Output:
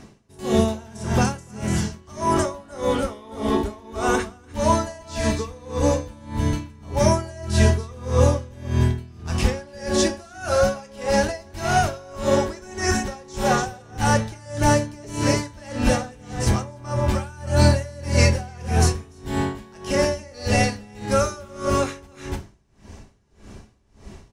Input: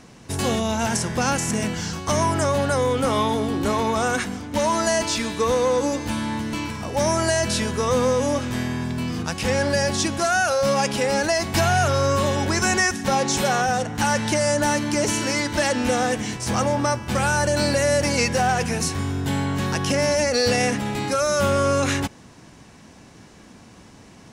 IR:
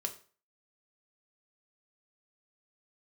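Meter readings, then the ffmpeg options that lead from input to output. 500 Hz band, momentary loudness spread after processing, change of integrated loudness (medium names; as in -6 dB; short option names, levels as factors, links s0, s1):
-2.0 dB, 11 LU, -1.5 dB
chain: -filter_complex "[0:a]lowshelf=f=460:g=7,aecho=1:1:292:0.447[s0];[1:a]atrim=start_sample=2205[s1];[s0][s1]afir=irnorm=-1:irlink=0,asubboost=boost=5:cutoff=67,aeval=exprs='val(0)*pow(10,-26*(0.5-0.5*cos(2*PI*1.7*n/s))/20)':c=same"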